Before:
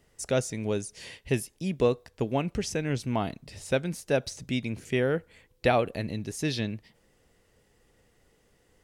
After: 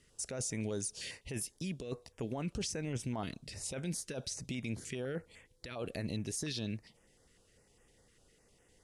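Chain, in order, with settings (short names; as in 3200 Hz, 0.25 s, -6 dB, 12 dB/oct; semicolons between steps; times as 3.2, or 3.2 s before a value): steep low-pass 11000 Hz 36 dB/oct; high shelf 2000 Hz +6.5 dB; negative-ratio compressor -29 dBFS, ratio -1; limiter -22 dBFS, peak gain reduction 8.5 dB; stepped notch 9.9 Hz 750–4200 Hz; gain -6 dB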